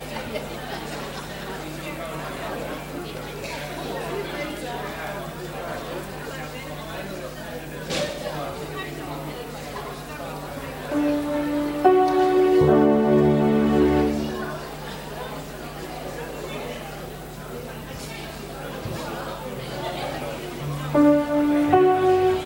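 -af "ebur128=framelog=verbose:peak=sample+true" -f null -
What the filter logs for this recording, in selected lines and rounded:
Integrated loudness:
  I:         -24.8 LUFS
  Threshold: -34.9 LUFS
Loudness range:
  LRA:        14.1 LU
  Threshold: -45.4 LUFS
  LRA low:   -33.3 LUFS
  LRA high:  -19.2 LUFS
Sample peak:
  Peak:       -3.8 dBFS
True peak:
  Peak:       -3.8 dBFS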